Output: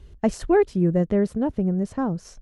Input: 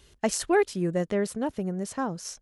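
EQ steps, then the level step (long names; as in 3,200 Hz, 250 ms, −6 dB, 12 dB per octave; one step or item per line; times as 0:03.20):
spectral tilt −3.5 dB per octave
0.0 dB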